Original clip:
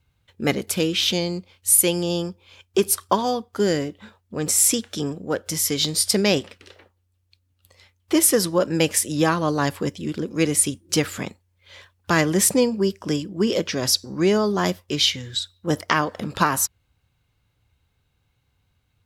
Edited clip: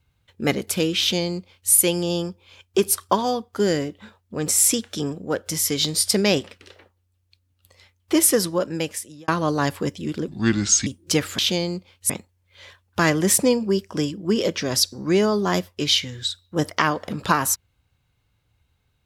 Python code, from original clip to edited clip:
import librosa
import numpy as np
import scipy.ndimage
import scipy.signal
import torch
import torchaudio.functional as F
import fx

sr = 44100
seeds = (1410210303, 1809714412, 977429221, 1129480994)

y = fx.edit(x, sr, fx.duplicate(start_s=1.0, length_s=0.71, to_s=11.21),
    fx.fade_out_span(start_s=8.32, length_s=0.96),
    fx.speed_span(start_s=10.28, length_s=0.41, speed=0.7), tone=tone)